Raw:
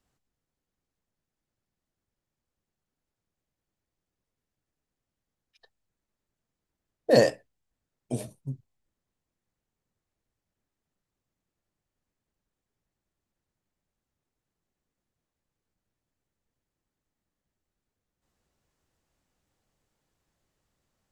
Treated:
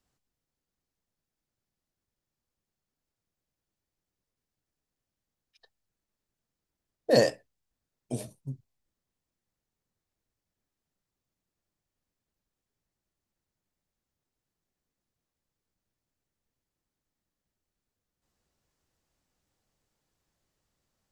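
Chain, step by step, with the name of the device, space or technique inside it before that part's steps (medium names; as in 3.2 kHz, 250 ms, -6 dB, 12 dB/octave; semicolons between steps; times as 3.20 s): presence and air boost (peaking EQ 5 kHz +3 dB 0.86 oct; treble shelf 9.2 kHz +3 dB); trim -2.5 dB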